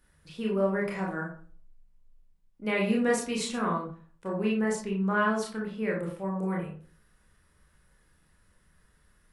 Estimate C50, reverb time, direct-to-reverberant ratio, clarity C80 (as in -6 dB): 4.5 dB, 0.45 s, -3.0 dB, 10.0 dB